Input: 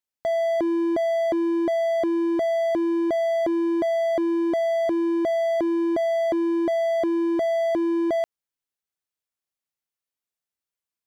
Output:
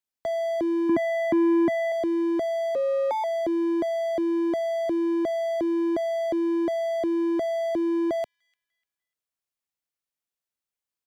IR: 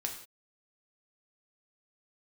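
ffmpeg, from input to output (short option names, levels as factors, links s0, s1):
-filter_complex "[0:a]asettb=1/sr,asplit=3[s0][s1][s2];[s0]atrim=end=0.894[s3];[s1]atrim=start=0.89:end=1.92,asetpts=PTS-STARTPTS,afade=t=in:d=0.004:c=qsin,afade=t=out:st=1.026:d=0.004:c=qsin,equalizer=f=125:t=o:w=1:g=9,equalizer=f=250:t=o:w=1:g=12,equalizer=f=500:t=o:w=1:g=-10,equalizer=f=1000:t=o:w=1:g=11,equalizer=f=2000:t=o:w=1:g=9,equalizer=f=4000:t=o:w=1:g=-5[s4];[s2]atrim=start=1.916[s5];[s3][s4]acrossfade=d=0.004:c1=hsin:c2=qsin[s6];[s6][s5]acrossfade=d=0.004:c1=qsin:c2=hsin,acrossover=split=170|750|2000[s7][s8][s9][s10];[s9]acompressor=threshold=0.01:ratio=6[s11];[s10]asplit=2[s12][s13];[s13]adelay=297,lowpass=f=3400:p=1,volume=0.075,asplit=2[s14][s15];[s15]adelay=297,lowpass=f=3400:p=1,volume=0.38,asplit=2[s16][s17];[s17]adelay=297,lowpass=f=3400:p=1,volume=0.38[s18];[s12][s14][s16][s18]amix=inputs=4:normalize=0[s19];[s7][s8][s11][s19]amix=inputs=4:normalize=0,asettb=1/sr,asplit=3[s20][s21][s22];[s20]atrim=end=2.754[s23];[s21]atrim=start=2.75:end=3.24,asetpts=PTS-STARTPTS,afade=t=in:d=0.004:c=qsin,afade=t=out:st=0.486:d=0.004:c=qsin,afreqshift=210[s24];[s22]atrim=start=3.236[s25];[s23][s24]acrossfade=d=0.004:c1=hsin:c2=qsin[s26];[s26][s25]acrossfade=d=0.004:c1=qsin:c2=hsin,volume=0.841"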